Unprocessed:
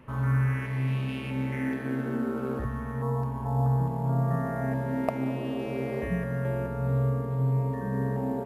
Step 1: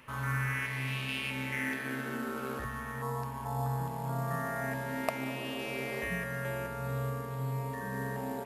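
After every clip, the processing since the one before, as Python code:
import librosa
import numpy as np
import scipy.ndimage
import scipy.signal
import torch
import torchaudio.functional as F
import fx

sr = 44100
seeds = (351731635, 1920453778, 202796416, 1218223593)

y = fx.tilt_shelf(x, sr, db=-10.0, hz=1100.0)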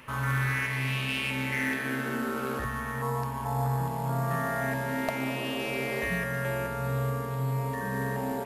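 y = 10.0 ** (-25.5 / 20.0) * np.tanh(x / 10.0 ** (-25.5 / 20.0))
y = y * librosa.db_to_amplitude(6.0)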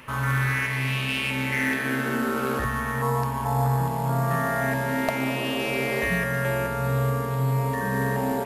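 y = fx.rider(x, sr, range_db=10, speed_s=2.0)
y = y * librosa.db_to_amplitude(5.0)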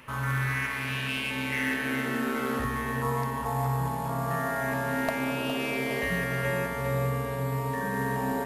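y = fx.echo_feedback(x, sr, ms=411, feedback_pct=55, wet_db=-8.0)
y = y * librosa.db_to_amplitude(-4.5)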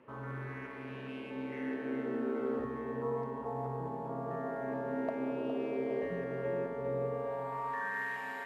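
y = fx.filter_sweep_bandpass(x, sr, from_hz=400.0, to_hz=2100.0, start_s=6.99, end_s=8.1, q=1.7)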